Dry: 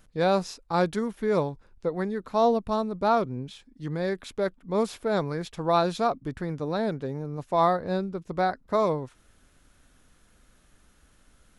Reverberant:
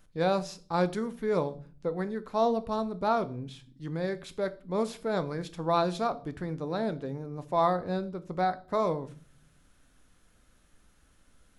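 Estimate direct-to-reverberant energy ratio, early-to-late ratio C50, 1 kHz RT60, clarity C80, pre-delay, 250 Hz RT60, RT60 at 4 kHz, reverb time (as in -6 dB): 12.0 dB, 19.0 dB, 0.40 s, 23.5 dB, 4 ms, 0.80 s, 0.40 s, 0.40 s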